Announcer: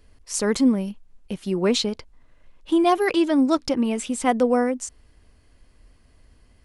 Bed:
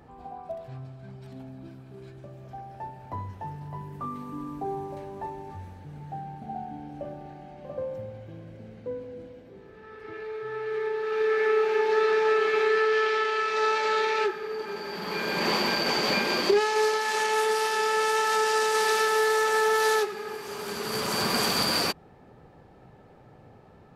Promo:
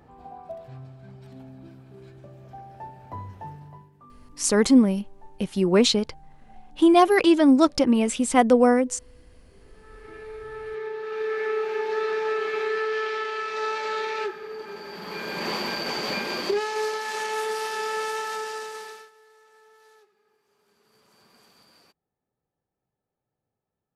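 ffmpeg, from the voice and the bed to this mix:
ffmpeg -i stem1.wav -i stem2.wav -filter_complex "[0:a]adelay=4100,volume=2.5dB[link_01];[1:a]volume=12dB,afade=type=out:start_time=3.47:duration=0.44:silence=0.16788,afade=type=in:start_time=9.32:duration=0.67:silence=0.211349,afade=type=out:start_time=17.97:duration=1.14:silence=0.0334965[link_02];[link_01][link_02]amix=inputs=2:normalize=0" out.wav

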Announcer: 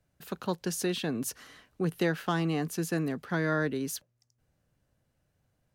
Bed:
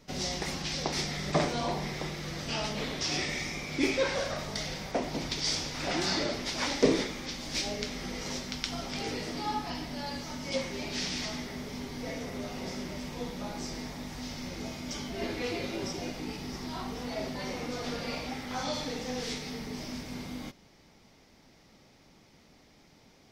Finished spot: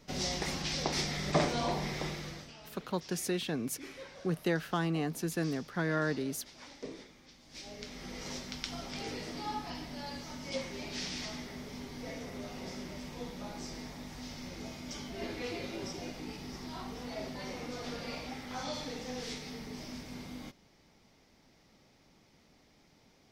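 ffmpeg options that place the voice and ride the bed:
ffmpeg -i stem1.wav -i stem2.wav -filter_complex "[0:a]adelay=2450,volume=-3dB[link_01];[1:a]volume=14dB,afade=type=out:start_time=2.1:duration=0.43:silence=0.112202,afade=type=in:start_time=7.47:duration=0.78:silence=0.177828[link_02];[link_01][link_02]amix=inputs=2:normalize=0" out.wav

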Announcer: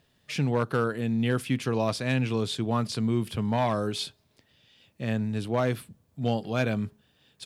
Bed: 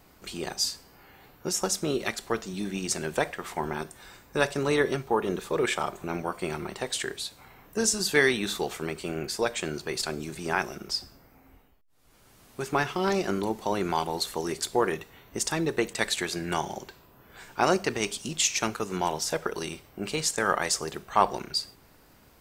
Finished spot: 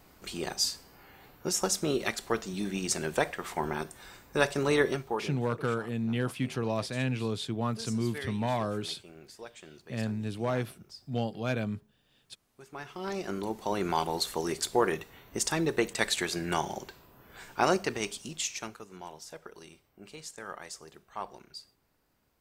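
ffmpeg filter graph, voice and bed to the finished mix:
ffmpeg -i stem1.wav -i stem2.wav -filter_complex "[0:a]adelay=4900,volume=-4.5dB[link_01];[1:a]volume=16.5dB,afade=type=out:start_time=4.83:duration=0.55:silence=0.133352,afade=type=in:start_time=12.73:duration=1.3:silence=0.133352,afade=type=out:start_time=17.46:duration=1.41:silence=0.16788[link_02];[link_01][link_02]amix=inputs=2:normalize=0" out.wav

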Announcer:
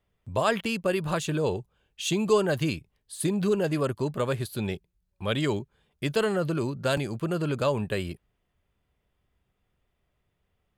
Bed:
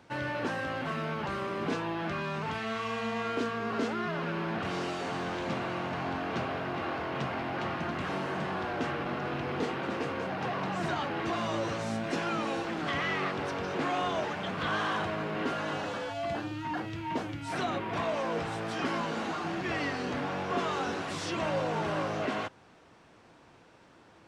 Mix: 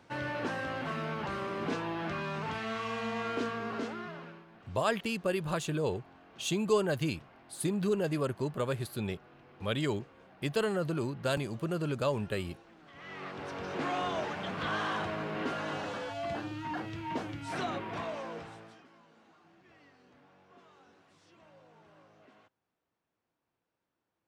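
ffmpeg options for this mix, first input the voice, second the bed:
ffmpeg -i stem1.wav -i stem2.wav -filter_complex "[0:a]adelay=4400,volume=-5dB[link_01];[1:a]volume=19dB,afade=type=out:start_time=3.48:duration=0.97:silence=0.0841395,afade=type=in:start_time=12.93:duration=0.95:silence=0.0891251,afade=type=out:start_time=17.61:duration=1.23:silence=0.0501187[link_02];[link_01][link_02]amix=inputs=2:normalize=0" out.wav

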